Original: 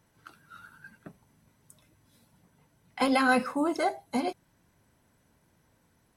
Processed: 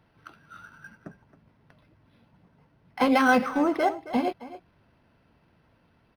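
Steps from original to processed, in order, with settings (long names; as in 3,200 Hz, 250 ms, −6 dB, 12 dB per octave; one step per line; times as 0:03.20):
0:00.94–0:03.00: high-shelf EQ 3,900 Hz −7.5 dB
far-end echo of a speakerphone 270 ms, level −14 dB
linearly interpolated sample-rate reduction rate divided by 6×
level +4 dB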